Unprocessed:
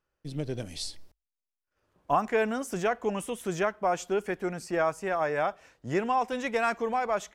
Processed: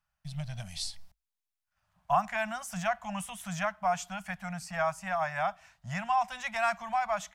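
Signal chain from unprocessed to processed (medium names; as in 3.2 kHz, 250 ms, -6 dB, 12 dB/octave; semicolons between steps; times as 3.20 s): elliptic band-stop 190–680 Hz, stop band 50 dB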